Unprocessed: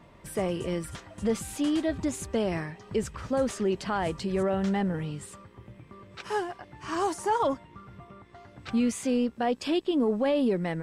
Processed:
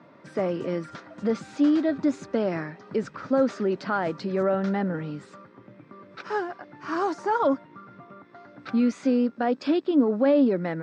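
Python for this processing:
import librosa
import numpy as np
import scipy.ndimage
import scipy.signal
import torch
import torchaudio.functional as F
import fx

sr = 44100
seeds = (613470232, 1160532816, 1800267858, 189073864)

y = fx.cabinet(x, sr, low_hz=140.0, low_slope=24, high_hz=5300.0, hz=(280.0, 570.0, 1400.0, 3000.0), db=(8, 5, 8, -7))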